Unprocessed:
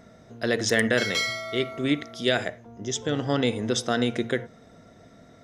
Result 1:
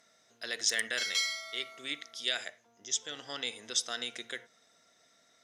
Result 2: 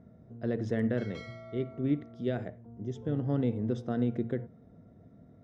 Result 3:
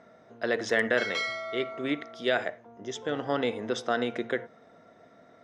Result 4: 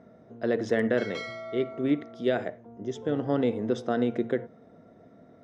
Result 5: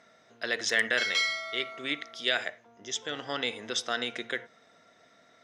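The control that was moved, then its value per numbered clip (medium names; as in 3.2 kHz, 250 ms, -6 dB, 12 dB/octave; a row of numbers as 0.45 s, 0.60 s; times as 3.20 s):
band-pass filter, frequency: 7.2 kHz, 110 Hz, 950 Hz, 370 Hz, 2.6 kHz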